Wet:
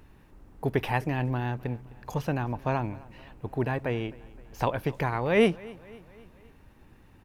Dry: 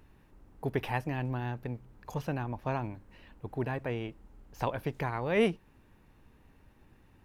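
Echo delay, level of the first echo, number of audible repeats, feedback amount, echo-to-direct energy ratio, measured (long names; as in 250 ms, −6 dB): 259 ms, −22.0 dB, 3, 54%, −20.5 dB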